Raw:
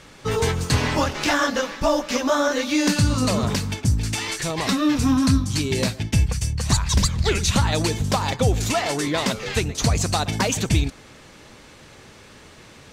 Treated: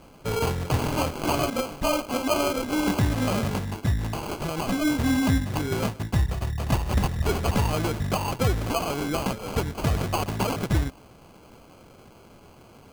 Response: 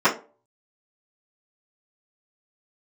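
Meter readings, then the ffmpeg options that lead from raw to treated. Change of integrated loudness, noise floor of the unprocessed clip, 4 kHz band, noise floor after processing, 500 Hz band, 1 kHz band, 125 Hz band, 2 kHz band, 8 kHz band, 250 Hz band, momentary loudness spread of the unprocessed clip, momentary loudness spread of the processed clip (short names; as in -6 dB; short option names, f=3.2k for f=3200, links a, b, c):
-4.5 dB, -47 dBFS, -8.0 dB, -51 dBFS, -3.5 dB, -3.0 dB, -4.0 dB, -6.5 dB, -9.5 dB, -4.0 dB, 4 LU, 5 LU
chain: -af "acrusher=samples=24:mix=1:aa=0.000001,volume=-4dB"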